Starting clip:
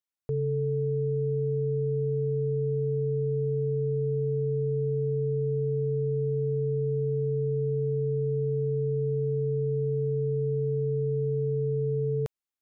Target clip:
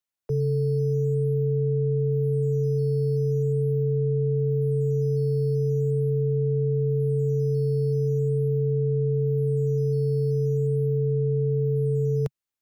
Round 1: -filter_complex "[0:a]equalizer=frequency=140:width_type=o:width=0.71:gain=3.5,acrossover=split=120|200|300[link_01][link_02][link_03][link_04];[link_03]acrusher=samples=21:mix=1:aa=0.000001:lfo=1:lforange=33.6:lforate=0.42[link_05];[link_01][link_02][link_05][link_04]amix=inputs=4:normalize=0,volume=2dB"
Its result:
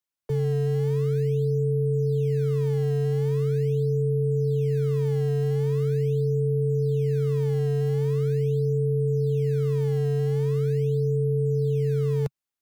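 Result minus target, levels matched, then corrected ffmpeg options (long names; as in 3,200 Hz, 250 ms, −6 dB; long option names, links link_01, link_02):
sample-and-hold swept by an LFO: distortion +14 dB
-filter_complex "[0:a]equalizer=frequency=140:width_type=o:width=0.71:gain=3.5,acrossover=split=120|200|300[link_01][link_02][link_03][link_04];[link_03]acrusher=samples=5:mix=1:aa=0.000001:lfo=1:lforange=8:lforate=0.42[link_05];[link_01][link_02][link_05][link_04]amix=inputs=4:normalize=0,volume=2dB"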